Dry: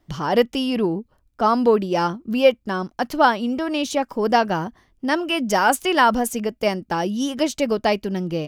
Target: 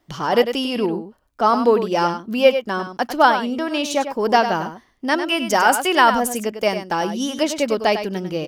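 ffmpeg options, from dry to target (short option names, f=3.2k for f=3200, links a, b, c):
-filter_complex "[0:a]lowshelf=f=180:g=-11,asplit=2[a][b];[b]aecho=0:1:99:0.335[c];[a][c]amix=inputs=2:normalize=0,volume=2.5dB"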